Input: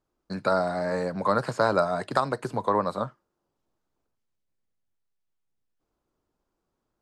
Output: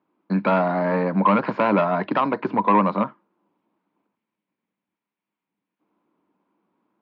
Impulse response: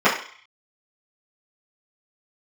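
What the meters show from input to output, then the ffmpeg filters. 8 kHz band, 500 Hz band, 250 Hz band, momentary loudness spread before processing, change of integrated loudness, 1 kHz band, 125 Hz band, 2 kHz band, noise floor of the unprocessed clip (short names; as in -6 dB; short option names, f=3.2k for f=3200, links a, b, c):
under -20 dB, +3.0 dB, +10.5 dB, 7 LU, +5.5 dB, +6.5 dB, +6.5 dB, +4.5 dB, -81 dBFS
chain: -af "aresample=16000,asoftclip=type=tanh:threshold=-20.5dB,aresample=44100,highpass=f=130:w=0.5412,highpass=f=130:w=1.3066,equalizer=f=130:t=q:w=4:g=-9,equalizer=f=200:t=q:w=4:g=10,equalizer=f=300:t=q:w=4:g=9,equalizer=f=980:t=q:w=4:g=9,equalizer=f=2.3k:t=q:w=4:g=6,lowpass=f=3.2k:w=0.5412,lowpass=f=3.2k:w=1.3066,volume=5dB"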